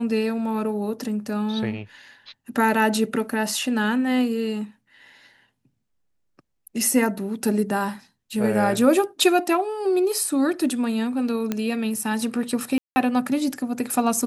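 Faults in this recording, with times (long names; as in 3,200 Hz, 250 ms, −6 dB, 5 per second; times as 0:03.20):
0:11.52: click −11 dBFS
0:12.78–0:12.96: drop-out 180 ms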